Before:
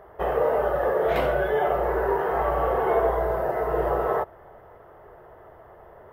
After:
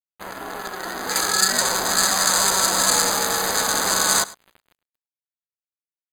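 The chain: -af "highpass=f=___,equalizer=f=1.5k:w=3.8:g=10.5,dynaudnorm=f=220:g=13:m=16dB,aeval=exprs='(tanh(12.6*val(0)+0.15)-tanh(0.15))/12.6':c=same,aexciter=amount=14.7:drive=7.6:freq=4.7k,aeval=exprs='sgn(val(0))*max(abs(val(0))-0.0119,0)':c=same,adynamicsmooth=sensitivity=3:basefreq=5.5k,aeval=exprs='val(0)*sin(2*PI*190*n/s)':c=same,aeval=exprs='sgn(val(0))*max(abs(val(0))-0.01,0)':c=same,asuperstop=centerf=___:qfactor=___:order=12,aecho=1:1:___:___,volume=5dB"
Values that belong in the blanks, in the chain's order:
870, 5500, 5.5, 104, 0.1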